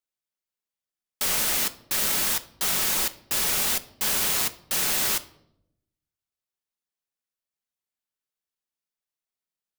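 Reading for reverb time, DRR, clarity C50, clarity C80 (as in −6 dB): 0.80 s, 10.0 dB, 17.0 dB, 21.0 dB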